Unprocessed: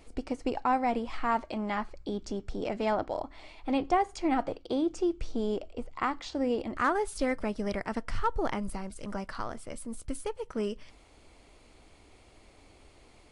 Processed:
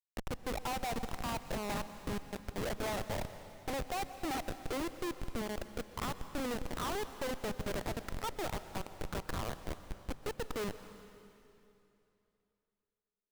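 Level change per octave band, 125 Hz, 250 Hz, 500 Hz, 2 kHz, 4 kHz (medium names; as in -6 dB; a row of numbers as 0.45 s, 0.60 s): +1.0 dB, -9.5 dB, -7.5 dB, -5.0 dB, +0.5 dB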